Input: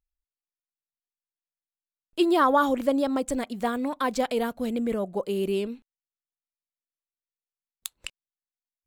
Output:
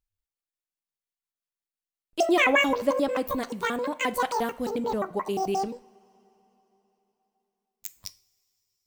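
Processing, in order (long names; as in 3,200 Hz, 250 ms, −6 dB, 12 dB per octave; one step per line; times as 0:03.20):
pitch shifter gated in a rhythm +11.5 semitones, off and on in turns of 88 ms
coupled-rooms reverb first 0.39 s, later 3.8 s, from −22 dB, DRR 13 dB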